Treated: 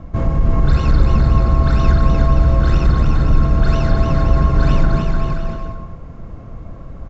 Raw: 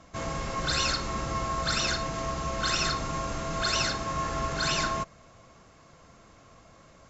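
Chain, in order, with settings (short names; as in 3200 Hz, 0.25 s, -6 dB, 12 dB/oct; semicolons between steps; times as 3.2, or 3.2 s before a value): LPF 3600 Hz 6 dB/oct; tilt -4.5 dB/oct; in parallel at +2 dB: compressor, threshold -22 dBFS, peak gain reduction 11 dB; on the sum: soft clip -5.5 dBFS, distortion -22 dB; bouncing-ball echo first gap 0.3 s, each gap 0.75×, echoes 5; gain +1 dB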